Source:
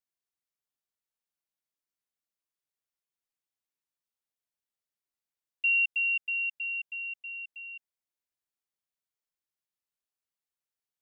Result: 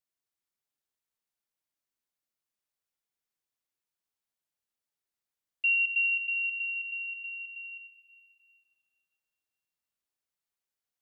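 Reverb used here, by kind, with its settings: plate-style reverb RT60 2.9 s, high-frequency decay 0.7×, pre-delay 85 ms, DRR 5 dB

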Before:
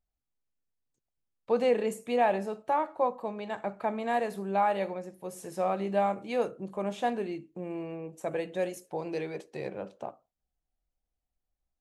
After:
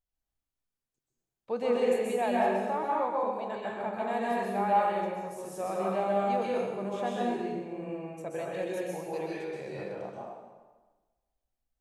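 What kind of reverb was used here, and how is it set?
plate-style reverb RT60 1.3 s, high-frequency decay 0.85×, pre-delay 0.115 s, DRR -5 dB; gain -6 dB

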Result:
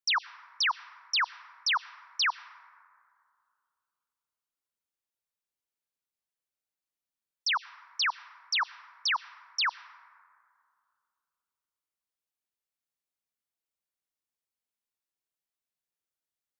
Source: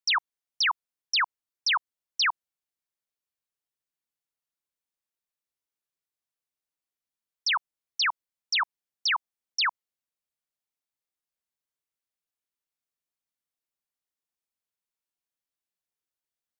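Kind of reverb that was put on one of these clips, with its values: plate-style reverb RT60 2.3 s, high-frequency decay 0.3×, pre-delay 80 ms, DRR 18.5 dB; gain -2.5 dB

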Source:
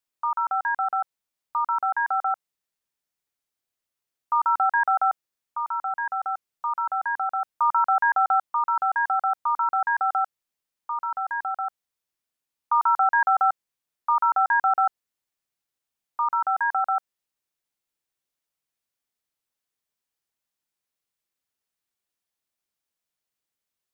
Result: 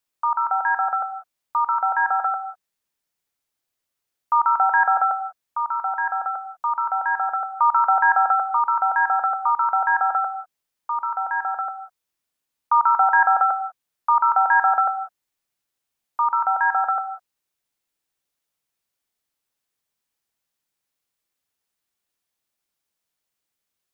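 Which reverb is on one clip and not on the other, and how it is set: non-linear reverb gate 0.22 s flat, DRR 11 dB; gain +4 dB

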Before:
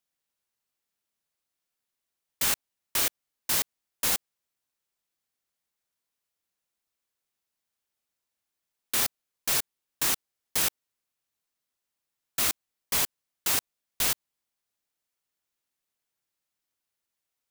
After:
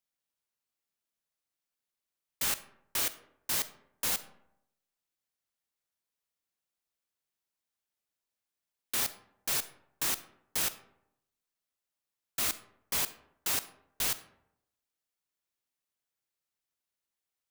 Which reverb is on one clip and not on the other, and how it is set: digital reverb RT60 0.79 s, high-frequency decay 0.5×, pre-delay 5 ms, DRR 13 dB; gain -5 dB

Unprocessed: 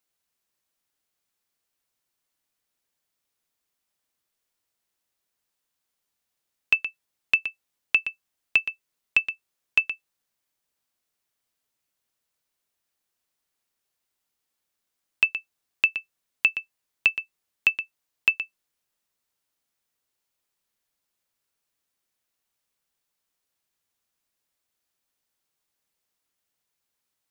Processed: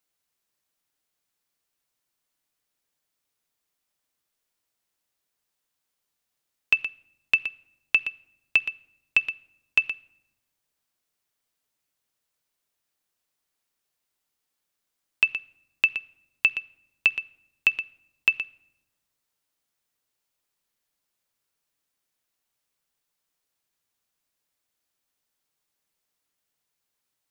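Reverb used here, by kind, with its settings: shoebox room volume 3600 m³, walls furnished, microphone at 0.41 m

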